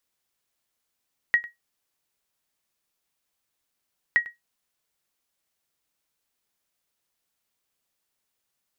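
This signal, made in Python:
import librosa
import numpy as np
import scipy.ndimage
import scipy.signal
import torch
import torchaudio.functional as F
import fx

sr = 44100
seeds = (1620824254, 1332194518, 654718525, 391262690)

y = fx.sonar_ping(sr, hz=1900.0, decay_s=0.16, every_s=2.82, pings=2, echo_s=0.1, echo_db=-19.5, level_db=-11.0)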